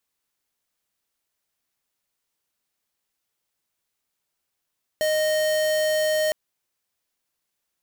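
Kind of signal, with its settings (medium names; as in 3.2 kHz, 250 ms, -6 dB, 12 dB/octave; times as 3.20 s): tone square 619 Hz -22 dBFS 1.31 s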